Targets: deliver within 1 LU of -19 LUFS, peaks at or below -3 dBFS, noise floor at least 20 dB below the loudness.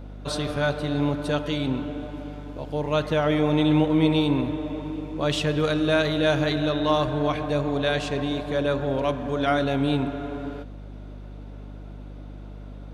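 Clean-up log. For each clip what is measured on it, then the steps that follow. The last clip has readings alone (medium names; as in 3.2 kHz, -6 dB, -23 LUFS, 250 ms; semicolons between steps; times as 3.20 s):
hum 50 Hz; highest harmonic 250 Hz; hum level -37 dBFS; loudness -24.5 LUFS; peak level -8.5 dBFS; loudness target -19.0 LUFS
-> hum notches 50/100/150/200/250 Hz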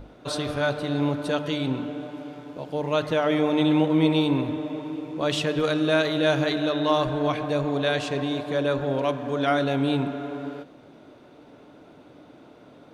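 hum not found; loudness -25.0 LUFS; peak level -8.0 dBFS; loudness target -19.0 LUFS
-> trim +6 dB; peak limiter -3 dBFS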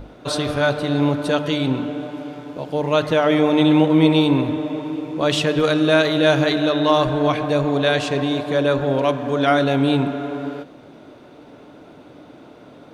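loudness -19.0 LUFS; peak level -3.0 dBFS; noise floor -45 dBFS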